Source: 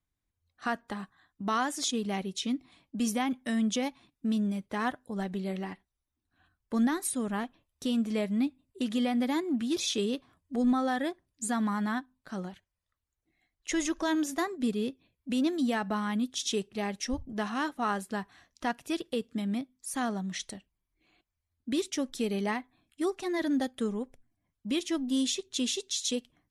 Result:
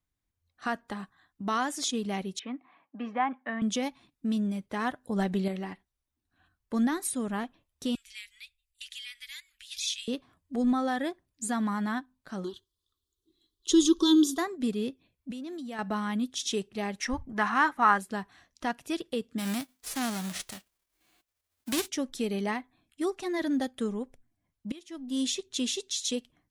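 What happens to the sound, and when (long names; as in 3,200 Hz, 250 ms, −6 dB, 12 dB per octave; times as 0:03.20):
0:02.39–0:03.62: loudspeaker in its box 330–2,400 Hz, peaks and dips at 370 Hz −7 dB, 790 Hz +6 dB, 1,100 Hz +8 dB, 1,700 Hz +4 dB
0:05.04–0:05.48: clip gain +5.5 dB
0:07.95–0:10.08: inverse Chebyshev band-stop filter 180–640 Hz, stop band 70 dB
0:12.44–0:14.38: drawn EQ curve 100 Hz 0 dB, 190 Hz −5 dB, 390 Hz +14 dB, 680 Hz −22 dB, 1,100 Hz +3 dB, 2,200 Hz −23 dB, 3,400 Hz +14 dB, 5,700 Hz +5 dB
0:15.31–0:15.79: output level in coarse steps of 19 dB
0:16.99–0:17.98: flat-topped bell 1,400 Hz +10 dB
0:19.38–0:21.87: spectral envelope flattened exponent 0.3
0:24.72–0:25.24: fade in quadratic, from −18.5 dB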